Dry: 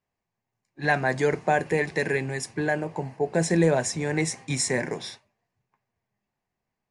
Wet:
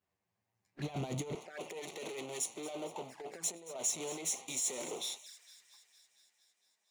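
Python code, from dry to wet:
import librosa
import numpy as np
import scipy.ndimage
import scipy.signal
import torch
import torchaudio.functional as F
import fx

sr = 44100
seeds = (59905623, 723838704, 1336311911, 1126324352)

y = np.where(x < 0.0, 10.0 ** (-12.0 / 20.0) * x, x)
y = fx.over_compress(y, sr, threshold_db=-31.0, ratio=-0.5)
y = np.clip(y, -10.0 ** (-31.5 / 20.0), 10.0 ** (-31.5 / 20.0))
y = fx.highpass(y, sr, hz=fx.steps((0.0, 51.0), (1.35, 430.0)), slope=12)
y = fx.echo_wet_highpass(y, sr, ms=229, feedback_pct=68, hz=2800.0, wet_db=-13.0)
y = fx.dynamic_eq(y, sr, hz=8200.0, q=0.97, threshold_db=-53.0, ratio=4.0, max_db=8)
y = fx.env_flanger(y, sr, rest_ms=10.7, full_db=-38.5)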